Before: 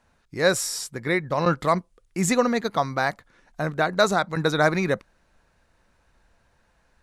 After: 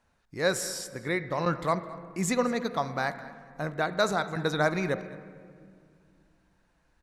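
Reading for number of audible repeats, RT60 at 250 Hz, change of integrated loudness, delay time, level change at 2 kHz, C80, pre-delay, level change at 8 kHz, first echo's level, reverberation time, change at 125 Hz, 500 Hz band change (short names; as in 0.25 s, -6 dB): 1, 3.0 s, -6.0 dB, 0.212 s, -5.5 dB, 13.0 dB, 28 ms, -6.0 dB, -20.0 dB, 2.1 s, -5.5 dB, -5.5 dB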